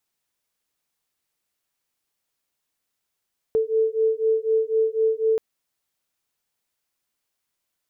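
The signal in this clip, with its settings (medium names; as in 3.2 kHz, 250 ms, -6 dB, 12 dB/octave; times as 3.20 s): beating tones 441 Hz, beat 4 Hz, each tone -21.5 dBFS 1.83 s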